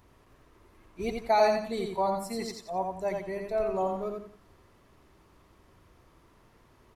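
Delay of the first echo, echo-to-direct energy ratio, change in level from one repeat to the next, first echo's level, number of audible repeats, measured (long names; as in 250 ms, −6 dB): 87 ms, −3.5 dB, −10.0 dB, −4.0 dB, 3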